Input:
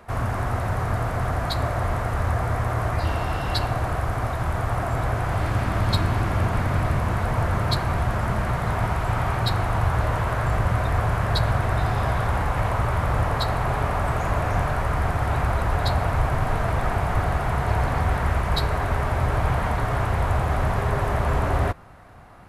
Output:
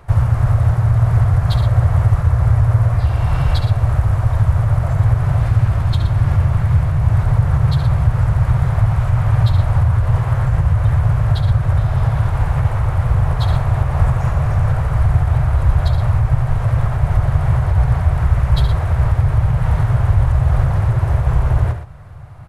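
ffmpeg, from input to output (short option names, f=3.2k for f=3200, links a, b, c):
-filter_complex "[0:a]lowshelf=f=180:t=q:w=3:g=9,alimiter=limit=-8dB:level=0:latency=1:release=208,asplit=2[a][b];[b]asetrate=37084,aresample=44100,atempo=1.18921,volume=-2dB[c];[a][c]amix=inputs=2:normalize=0,aecho=1:1:69.97|119.5:0.355|0.282,volume=-1dB"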